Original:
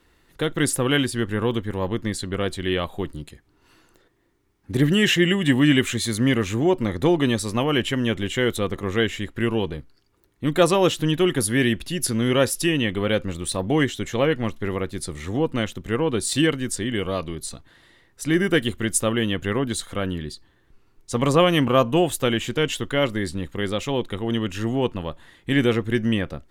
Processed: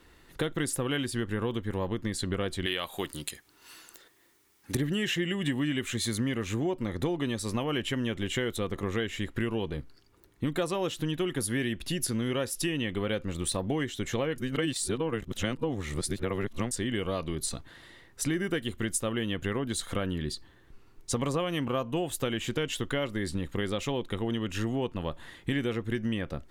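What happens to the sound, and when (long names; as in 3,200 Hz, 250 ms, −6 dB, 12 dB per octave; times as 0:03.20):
0:02.66–0:04.75: spectral tilt +3.5 dB per octave
0:14.38–0:16.71: reverse
whole clip: downward compressor 6 to 1, threshold −30 dBFS; level +2.5 dB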